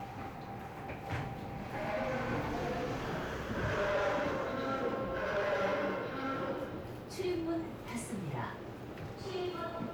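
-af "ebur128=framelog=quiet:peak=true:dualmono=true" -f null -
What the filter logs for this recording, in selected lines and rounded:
Integrated loudness:
  I:         -34.1 LUFS
  Threshold: -44.1 LUFS
Loudness range:
  LRA:         5.1 LU
  Threshold: -53.3 LUFS
  LRA low:   -36.6 LUFS
  LRA high:  -31.5 LUFS
True peak:
  Peak:      -25.4 dBFS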